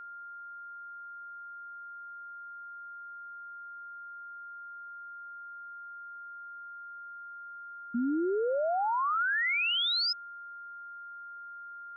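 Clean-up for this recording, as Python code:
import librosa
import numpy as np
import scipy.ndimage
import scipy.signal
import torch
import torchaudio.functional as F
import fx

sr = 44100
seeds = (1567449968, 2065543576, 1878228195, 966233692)

y = fx.notch(x, sr, hz=1400.0, q=30.0)
y = fx.noise_reduce(y, sr, print_start_s=6.84, print_end_s=7.34, reduce_db=30.0)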